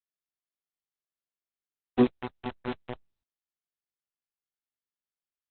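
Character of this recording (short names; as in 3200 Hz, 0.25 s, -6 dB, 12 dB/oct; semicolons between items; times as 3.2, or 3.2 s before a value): random-step tremolo; a quantiser's noise floor 6-bit, dither none; Opus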